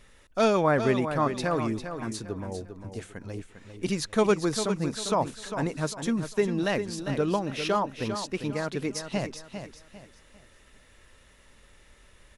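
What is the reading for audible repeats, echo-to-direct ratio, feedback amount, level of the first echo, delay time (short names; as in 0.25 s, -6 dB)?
3, -8.5 dB, 32%, -9.0 dB, 0.4 s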